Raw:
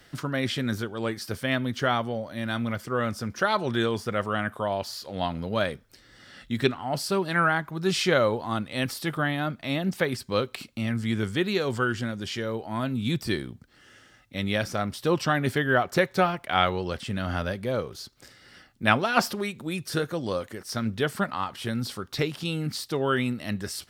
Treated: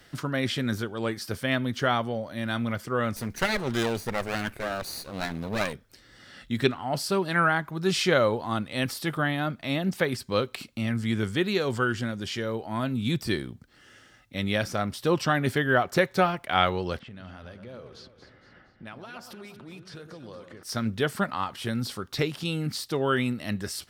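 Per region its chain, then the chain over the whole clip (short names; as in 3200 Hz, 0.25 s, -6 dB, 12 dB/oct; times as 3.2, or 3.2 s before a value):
3.16–5.73 minimum comb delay 0.47 ms + high shelf 8300 Hz +6.5 dB
16.99–20.63 low-pass opened by the level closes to 1400 Hz, open at -22.5 dBFS + compressor 4:1, threshold -43 dBFS + echo with dull and thin repeats by turns 0.116 s, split 1200 Hz, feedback 67%, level -7.5 dB
whole clip: dry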